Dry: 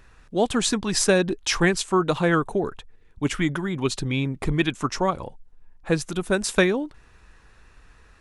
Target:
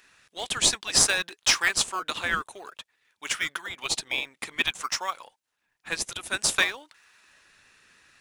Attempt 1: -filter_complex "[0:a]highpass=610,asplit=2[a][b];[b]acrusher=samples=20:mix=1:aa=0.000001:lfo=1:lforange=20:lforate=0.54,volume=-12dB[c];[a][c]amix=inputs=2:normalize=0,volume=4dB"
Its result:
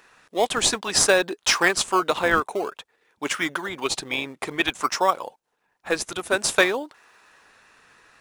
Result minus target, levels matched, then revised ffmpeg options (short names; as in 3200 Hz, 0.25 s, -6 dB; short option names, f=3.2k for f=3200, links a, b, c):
500 Hz band +12.5 dB
-filter_complex "[0:a]highpass=1.9k,asplit=2[a][b];[b]acrusher=samples=20:mix=1:aa=0.000001:lfo=1:lforange=20:lforate=0.54,volume=-12dB[c];[a][c]amix=inputs=2:normalize=0,volume=4dB"